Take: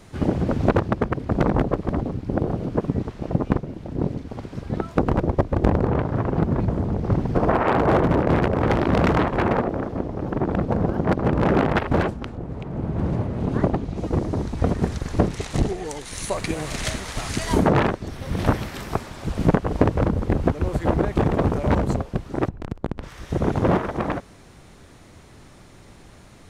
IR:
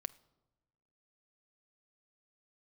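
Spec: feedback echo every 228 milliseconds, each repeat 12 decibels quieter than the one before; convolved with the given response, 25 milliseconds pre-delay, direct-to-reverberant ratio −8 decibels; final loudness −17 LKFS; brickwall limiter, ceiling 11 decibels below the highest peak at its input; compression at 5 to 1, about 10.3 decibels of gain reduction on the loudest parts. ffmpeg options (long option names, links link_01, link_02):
-filter_complex "[0:a]acompressor=threshold=-25dB:ratio=5,alimiter=limit=-21dB:level=0:latency=1,aecho=1:1:228|456|684:0.251|0.0628|0.0157,asplit=2[link_01][link_02];[1:a]atrim=start_sample=2205,adelay=25[link_03];[link_02][link_03]afir=irnorm=-1:irlink=0,volume=10.5dB[link_04];[link_01][link_04]amix=inputs=2:normalize=0,volume=6.5dB"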